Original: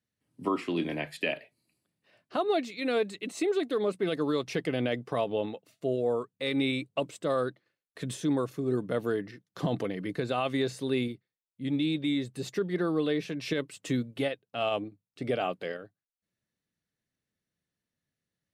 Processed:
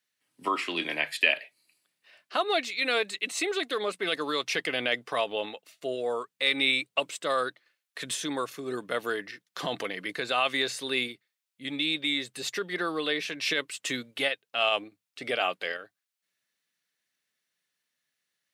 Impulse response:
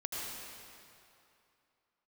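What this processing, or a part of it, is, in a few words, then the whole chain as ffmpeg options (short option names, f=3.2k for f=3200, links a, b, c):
filter by subtraction: -filter_complex "[0:a]asplit=2[a][b];[b]lowpass=2.2k,volume=-1[c];[a][c]amix=inputs=2:normalize=0,volume=8dB"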